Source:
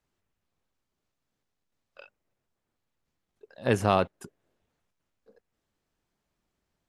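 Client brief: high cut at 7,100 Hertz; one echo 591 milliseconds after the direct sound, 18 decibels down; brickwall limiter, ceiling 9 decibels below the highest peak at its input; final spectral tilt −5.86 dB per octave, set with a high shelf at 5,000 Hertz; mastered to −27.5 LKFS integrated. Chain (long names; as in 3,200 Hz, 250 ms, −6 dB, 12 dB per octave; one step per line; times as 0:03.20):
low-pass filter 7,100 Hz
high-shelf EQ 5,000 Hz −5 dB
brickwall limiter −17.5 dBFS
single-tap delay 591 ms −18 dB
level +7 dB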